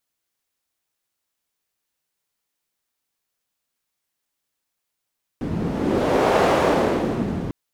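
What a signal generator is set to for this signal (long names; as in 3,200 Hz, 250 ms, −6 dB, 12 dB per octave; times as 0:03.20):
wind from filtered noise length 2.10 s, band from 190 Hz, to 630 Hz, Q 1.3, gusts 1, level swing 8.5 dB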